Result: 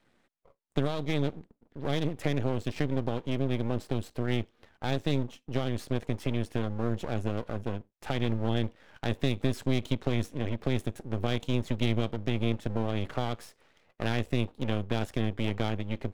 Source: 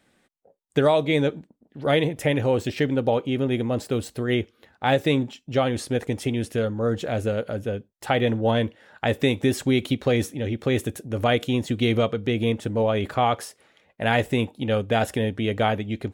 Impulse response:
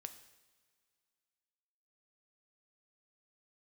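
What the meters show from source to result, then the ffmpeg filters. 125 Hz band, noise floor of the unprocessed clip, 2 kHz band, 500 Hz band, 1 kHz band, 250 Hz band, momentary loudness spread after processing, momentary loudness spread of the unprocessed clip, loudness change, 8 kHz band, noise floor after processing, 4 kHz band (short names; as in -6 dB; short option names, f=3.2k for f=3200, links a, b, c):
-3.5 dB, -67 dBFS, -10.5 dB, -11.0 dB, -11.5 dB, -6.5 dB, 6 LU, 7 LU, -8.0 dB, -11.0 dB, -72 dBFS, -7.5 dB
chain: -filter_complex "[0:a]aemphasis=mode=reproduction:type=50kf,acrossover=split=240|3000[a][b][c];[b]acompressor=threshold=-30dB:ratio=6[d];[a][d][c]amix=inputs=3:normalize=0,aeval=exprs='max(val(0),0)':c=same"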